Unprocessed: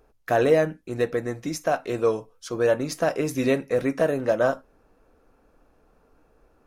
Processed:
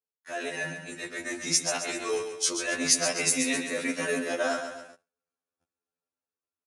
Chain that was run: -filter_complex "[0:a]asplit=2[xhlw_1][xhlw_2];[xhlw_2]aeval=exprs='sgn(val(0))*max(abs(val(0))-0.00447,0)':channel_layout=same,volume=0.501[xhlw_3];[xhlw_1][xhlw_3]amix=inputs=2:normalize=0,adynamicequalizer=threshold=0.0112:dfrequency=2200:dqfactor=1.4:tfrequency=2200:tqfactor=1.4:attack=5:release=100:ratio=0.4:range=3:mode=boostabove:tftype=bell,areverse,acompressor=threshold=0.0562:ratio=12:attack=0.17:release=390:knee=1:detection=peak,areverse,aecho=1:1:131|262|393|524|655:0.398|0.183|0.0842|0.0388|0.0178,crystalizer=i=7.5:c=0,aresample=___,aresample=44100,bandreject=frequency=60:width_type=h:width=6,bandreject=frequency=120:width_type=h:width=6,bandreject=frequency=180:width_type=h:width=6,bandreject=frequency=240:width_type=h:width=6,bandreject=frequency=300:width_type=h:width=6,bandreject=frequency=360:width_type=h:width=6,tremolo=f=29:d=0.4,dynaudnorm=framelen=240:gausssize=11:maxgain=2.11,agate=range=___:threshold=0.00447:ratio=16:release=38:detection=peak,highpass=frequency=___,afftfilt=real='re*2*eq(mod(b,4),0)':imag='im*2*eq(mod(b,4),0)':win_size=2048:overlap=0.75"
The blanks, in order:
22050, 0.0126, 100